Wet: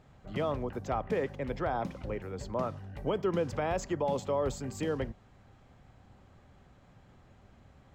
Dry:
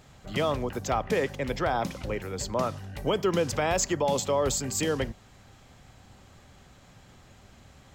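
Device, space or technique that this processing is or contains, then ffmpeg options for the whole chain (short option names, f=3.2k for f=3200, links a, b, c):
through cloth: -af "highshelf=f=3k:g=-15.5,volume=-4dB"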